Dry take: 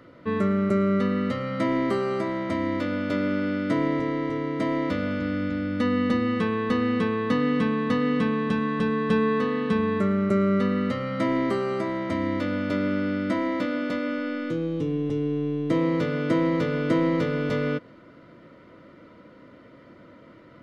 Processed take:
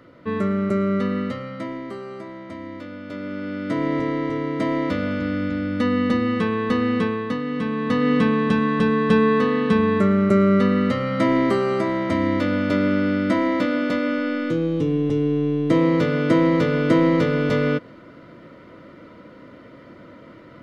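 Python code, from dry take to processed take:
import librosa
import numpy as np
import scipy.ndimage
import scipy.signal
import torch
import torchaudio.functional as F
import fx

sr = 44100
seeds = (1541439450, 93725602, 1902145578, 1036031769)

y = fx.gain(x, sr, db=fx.line((1.19, 1.0), (1.82, -8.5), (3.01, -8.5), (3.99, 3.0), (7.03, 3.0), (7.44, -4.0), (8.12, 5.5)))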